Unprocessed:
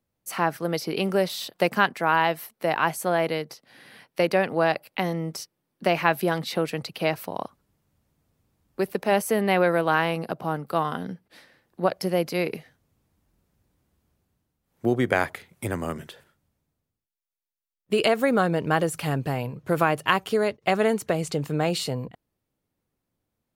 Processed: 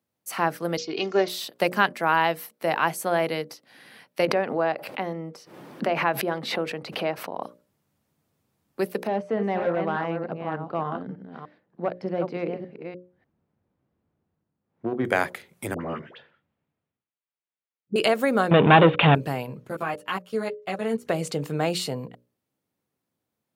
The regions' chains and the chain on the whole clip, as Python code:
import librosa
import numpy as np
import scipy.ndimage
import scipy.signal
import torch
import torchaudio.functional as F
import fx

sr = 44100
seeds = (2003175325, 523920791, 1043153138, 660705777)

y = fx.chain(x, sr, fx.comb(ms=2.8, depth=0.56),
    fx.resample_bad(factor=3, down='none', up='filtered'),
    fx.band_widen(depth_pct=70), at=(0.77, 1.28))
y = fx.chain(y, sr, fx.lowpass(hz=1200.0, slope=6),
    fx.low_shelf(hz=180.0, db=-10.5),
    fx.pre_swell(db_per_s=71.0), at=(4.25, 7.43))
y = fx.chain(y, sr, fx.reverse_delay(ms=298, wet_db=-7.0),
    fx.overload_stage(gain_db=15.5),
    fx.spacing_loss(db_at_10k=40), at=(9.07, 15.05))
y = fx.chain(y, sr, fx.lowpass(hz=3200.0, slope=24),
    fx.dispersion(late='highs', ms=72.0, hz=870.0), at=(15.74, 17.96))
y = fx.chain(y, sr, fx.leveller(passes=5),
    fx.cheby_ripple(hz=3700.0, ripple_db=3), at=(18.51, 19.15))
y = fx.chain(y, sr, fx.level_steps(step_db=24),
    fx.ensemble(), at=(19.67, 21.05))
y = scipy.signal.sosfilt(scipy.signal.butter(2, 130.0, 'highpass', fs=sr, output='sos'), y)
y = fx.hum_notches(y, sr, base_hz=60, count=10)